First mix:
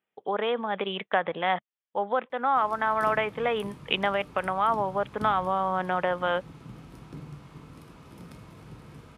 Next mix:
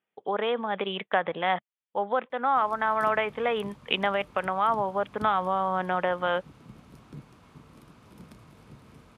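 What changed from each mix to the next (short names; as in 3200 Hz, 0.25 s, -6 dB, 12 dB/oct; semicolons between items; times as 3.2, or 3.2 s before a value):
reverb: off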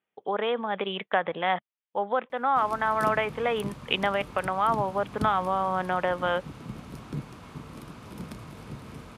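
background +9.5 dB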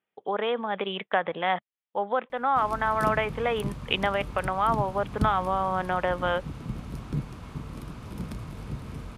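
background: remove HPF 200 Hz 6 dB/oct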